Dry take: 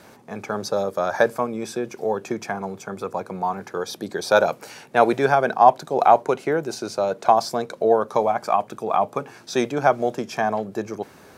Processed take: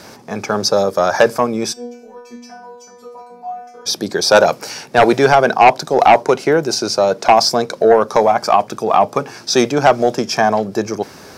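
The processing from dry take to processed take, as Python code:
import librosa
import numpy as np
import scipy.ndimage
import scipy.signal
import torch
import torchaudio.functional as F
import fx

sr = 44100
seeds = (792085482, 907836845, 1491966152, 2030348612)

y = fx.peak_eq(x, sr, hz=5200.0, db=10.0, octaves=0.52)
y = fx.fold_sine(y, sr, drive_db=6, ceiling_db=-1.5)
y = fx.stiff_resonator(y, sr, f0_hz=240.0, decay_s=0.74, stiffness=0.002, at=(1.72, 3.85), fade=0.02)
y = F.gain(torch.from_numpy(y), -1.0).numpy()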